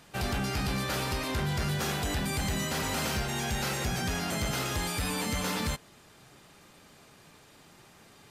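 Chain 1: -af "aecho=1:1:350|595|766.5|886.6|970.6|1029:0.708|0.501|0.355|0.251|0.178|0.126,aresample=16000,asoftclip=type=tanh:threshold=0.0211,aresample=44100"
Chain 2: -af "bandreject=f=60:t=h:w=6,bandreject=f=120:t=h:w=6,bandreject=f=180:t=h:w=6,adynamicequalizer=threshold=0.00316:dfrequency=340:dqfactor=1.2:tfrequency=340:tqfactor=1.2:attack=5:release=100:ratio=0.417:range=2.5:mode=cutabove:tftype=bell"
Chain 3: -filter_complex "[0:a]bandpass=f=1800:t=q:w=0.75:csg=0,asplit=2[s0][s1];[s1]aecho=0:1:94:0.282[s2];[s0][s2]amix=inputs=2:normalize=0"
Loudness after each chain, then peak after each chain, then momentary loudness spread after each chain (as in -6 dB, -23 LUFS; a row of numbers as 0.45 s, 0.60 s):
-35.5 LUFS, -31.5 LUFS, -36.0 LUFS; -29.5 dBFS, -22.5 dBFS, -23.5 dBFS; 17 LU, 1 LU, 3 LU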